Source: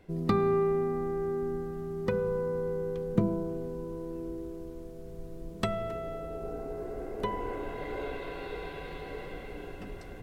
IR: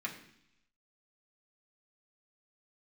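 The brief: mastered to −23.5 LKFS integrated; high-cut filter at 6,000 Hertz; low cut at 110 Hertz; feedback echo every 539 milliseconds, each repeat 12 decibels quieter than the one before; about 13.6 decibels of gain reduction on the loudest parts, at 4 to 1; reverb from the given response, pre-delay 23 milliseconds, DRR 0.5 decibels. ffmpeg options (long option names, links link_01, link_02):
-filter_complex "[0:a]highpass=110,lowpass=6000,acompressor=threshold=-39dB:ratio=4,aecho=1:1:539|1078|1617:0.251|0.0628|0.0157,asplit=2[link_01][link_02];[1:a]atrim=start_sample=2205,adelay=23[link_03];[link_02][link_03]afir=irnorm=-1:irlink=0,volume=-3dB[link_04];[link_01][link_04]amix=inputs=2:normalize=0,volume=17.5dB"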